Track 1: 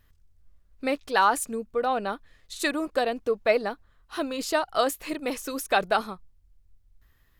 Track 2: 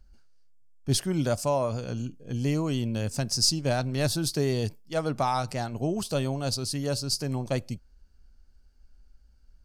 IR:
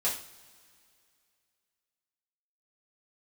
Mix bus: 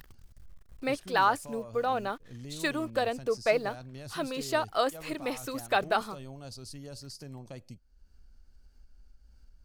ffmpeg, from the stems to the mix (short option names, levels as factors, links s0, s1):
-filter_complex "[0:a]deesser=0.65,equalizer=f=91:w=0.47:g=-3.5,acrusher=bits=8:mix=0:aa=0.5,volume=0.708[s0];[1:a]alimiter=limit=0.0891:level=0:latency=1:release=16,volume=0.168[s1];[s0][s1]amix=inputs=2:normalize=0,acompressor=mode=upward:threshold=0.0112:ratio=2.5"